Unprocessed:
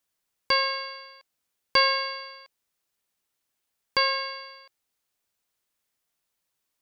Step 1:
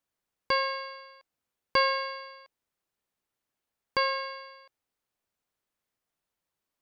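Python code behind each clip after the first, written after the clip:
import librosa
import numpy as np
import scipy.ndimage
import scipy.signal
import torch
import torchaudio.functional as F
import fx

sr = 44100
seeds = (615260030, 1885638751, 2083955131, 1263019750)

y = fx.high_shelf(x, sr, hz=2200.0, db=-9.5)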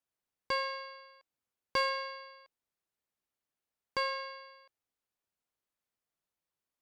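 y = fx.cheby_harmonics(x, sr, harmonics=(2, 8), levels_db=(-16, -30), full_scale_db=-10.5)
y = F.gain(torch.from_numpy(y), -6.0).numpy()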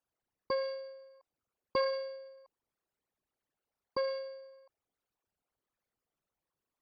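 y = fx.envelope_sharpen(x, sr, power=3.0)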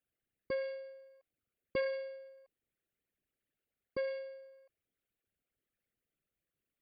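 y = fx.fixed_phaser(x, sr, hz=2300.0, stages=4)
y = F.gain(torch.from_numpy(y), 1.5).numpy()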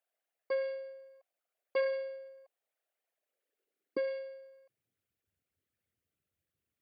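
y = fx.filter_sweep_highpass(x, sr, from_hz=670.0, to_hz=82.0, start_s=3.14, end_s=5.22, q=3.4)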